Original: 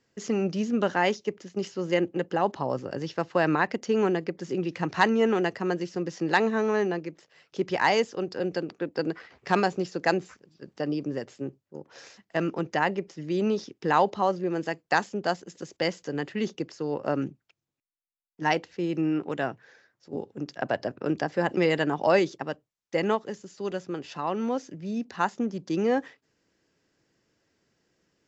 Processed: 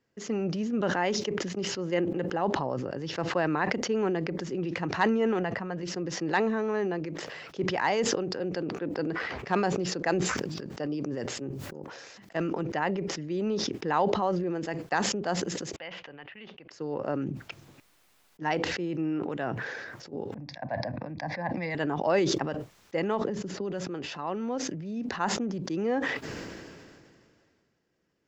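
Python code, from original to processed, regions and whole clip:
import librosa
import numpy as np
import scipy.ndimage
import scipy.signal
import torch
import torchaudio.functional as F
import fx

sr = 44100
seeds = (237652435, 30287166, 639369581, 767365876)

y = fx.chain(x, sr, fx.lowpass(hz=2000.0, slope=6),
    fx.peak_eq(hz=360.0, db=-10.0, octaves=0.63), at=(5.39, 5.83))
y = fx.chain(y, sr, fx.high_shelf(hz=5600.0, db=6.5),
    fx.sustainer(db_per_s=49.0), at=(10.12, 12.63))
y = fx.chain(y, sr, fx.low_shelf_res(hz=520.0, db=-7.5, q=1.5),
    fx.transient(attack_db=-1, sustain_db=-8),
    fx.ladder_lowpass(hz=3300.0, resonance_pct=50), at=(15.76, 16.71))
y = fx.chain(y, sr, fx.lowpass(hz=3900.0, slope=12),
    fx.fixed_phaser(hz=2000.0, stages=8),
    fx.band_widen(depth_pct=70), at=(20.34, 21.75))
y = fx.chain(y, sr, fx.lowpass(hz=6400.0, slope=12),
    fx.tilt_shelf(db=4.5, hz=760.0),
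    fx.band_squash(depth_pct=100), at=(23.21, 23.73))
y = fx.high_shelf(y, sr, hz=4200.0, db=-9.0)
y = fx.sustainer(y, sr, db_per_s=27.0)
y = F.gain(torch.from_numpy(y), -4.0).numpy()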